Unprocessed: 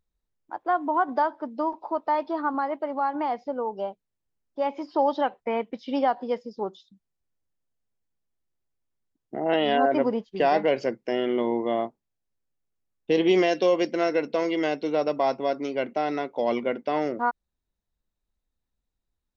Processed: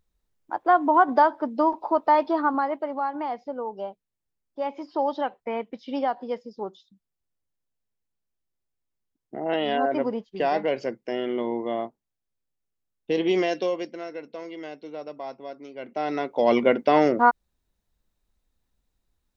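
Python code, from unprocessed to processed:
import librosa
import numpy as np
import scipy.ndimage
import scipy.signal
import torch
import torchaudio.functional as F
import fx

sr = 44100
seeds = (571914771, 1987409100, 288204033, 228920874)

y = fx.gain(x, sr, db=fx.line((2.26, 5.5), (3.15, -2.5), (13.56, -2.5), (14.04, -12.0), (15.75, -12.0), (16.01, -1.5), (16.64, 7.5)))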